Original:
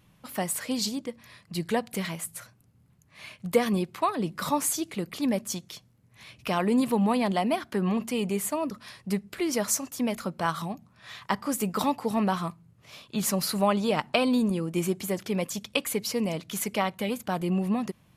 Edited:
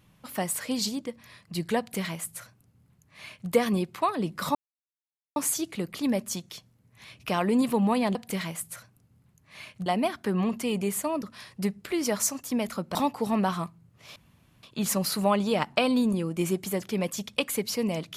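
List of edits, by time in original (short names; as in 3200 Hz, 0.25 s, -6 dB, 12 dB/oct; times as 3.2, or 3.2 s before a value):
1.79–3.5 copy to 7.34
4.55 insert silence 0.81 s
10.43–11.79 cut
13 insert room tone 0.47 s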